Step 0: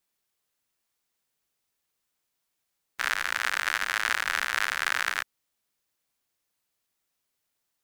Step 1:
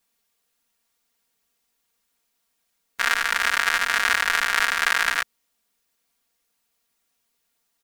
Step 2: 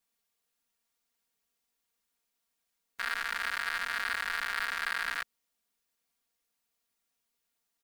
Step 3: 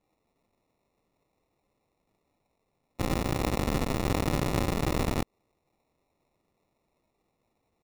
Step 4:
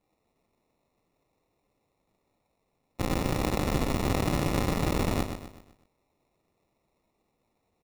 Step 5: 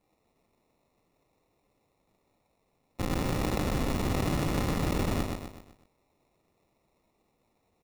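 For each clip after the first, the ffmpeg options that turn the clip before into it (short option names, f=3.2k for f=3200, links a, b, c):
-af "aecho=1:1:4.3:0.74,volume=4.5dB"
-af "asoftclip=type=tanh:threshold=-13dB,volume=-8.5dB"
-af "acrusher=samples=28:mix=1:aa=0.000001,volume=6dB"
-af "aecho=1:1:126|252|378|504|630:0.398|0.167|0.0702|0.0295|0.0124"
-af "asoftclip=type=tanh:threshold=-23dB,volume=2.5dB"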